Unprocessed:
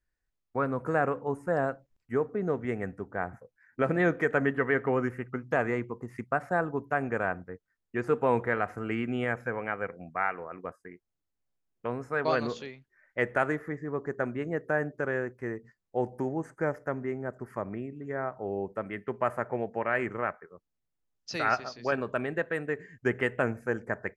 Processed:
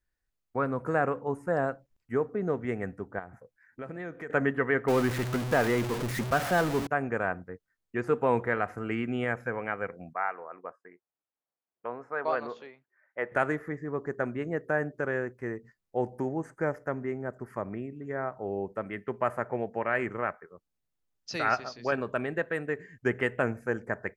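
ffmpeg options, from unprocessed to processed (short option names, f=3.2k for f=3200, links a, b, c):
-filter_complex "[0:a]asettb=1/sr,asplit=3[a][b][c];[a]atrim=end=3.194[d];[b]atrim=start=3.19:end=4.3,asetpts=PTS-STARTPTS,afade=t=in:d=0.004:c=qsin,afade=t=out:st=1.106:d=0.004:c=qsin,acompressor=threshold=-46dB:ratio=2:attack=3.2:release=140:knee=1:detection=peak[e];[c]atrim=start=4.296[f];[d][e]acrossfade=d=0.004:c1=hsin:c2=qsin[g];[g][f]acrossfade=d=0.004:c1=qsin:c2=hsin,asettb=1/sr,asplit=3[h][i][j];[h]atrim=end=4.884[k];[i]atrim=start=4.88:end=6.87,asetpts=PTS-STARTPTS,afade=t=in:d=0.004:c=qsin,afade=t=out:st=1.986:d=0.004:c=qsin,aeval=exprs='val(0)+0.5*0.0398*sgn(val(0))':c=same[l];[j]atrim=start=6.866[m];[k][l]acrossfade=d=0.004:c1=hsin:c2=qsin[n];[n][m]acrossfade=d=0.004:c1=qsin:c2=hsin,asettb=1/sr,asplit=3[o][p][q];[o]atrim=end=10.134[r];[p]atrim=start=10.13:end=13.32,asetpts=PTS-STARTPTS,afade=t=in:d=0.004:c=qsin,afade=t=out:st=3.186:d=0.004:c=qsin,bandpass=f=890:t=q:w=0.87[s];[q]atrim=start=13.316[t];[r][s]acrossfade=d=0.004:c1=hsin:c2=qsin[u];[u][t]acrossfade=d=0.004:c1=qsin:c2=hsin"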